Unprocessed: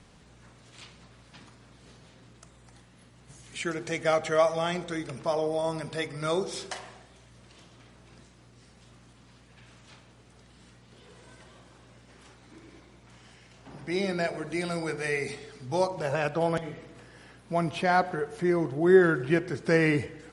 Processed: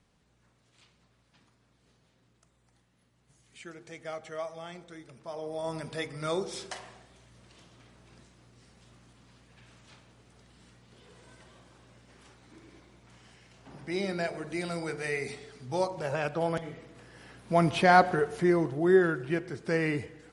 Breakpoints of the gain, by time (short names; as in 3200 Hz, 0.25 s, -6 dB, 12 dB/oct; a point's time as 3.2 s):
5.22 s -14 dB
5.76 s -3 dB
16.94 s -3 dB
17.64 s +4 dB
18.18 s +4 dB
19.19 s -5.5 dB